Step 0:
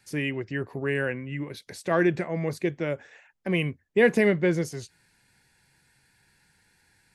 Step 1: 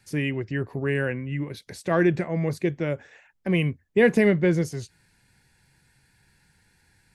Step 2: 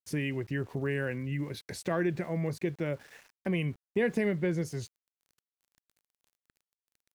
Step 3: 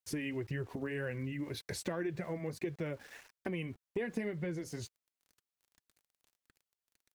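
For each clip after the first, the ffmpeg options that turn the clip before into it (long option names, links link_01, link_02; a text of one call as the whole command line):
ffmpeg -i in.wav -af "lowshelf=frequency=190:gain=8" out.wav
ffmpeg -i in.wav -af "acompressor=threshold=-33dB:ratio=2,aeval=exprs='val(0)*gte(abs(val(0)),0.00237)':channel_layout=same" out.wav
ffmpeg -i in.wav -af "acompressor=threshold=-34dB:ratio=6,flanger=delay=1.4:depth=2.7:regen=-41:speed=1.8:shape=triangular,volume=4.5dB" out.wav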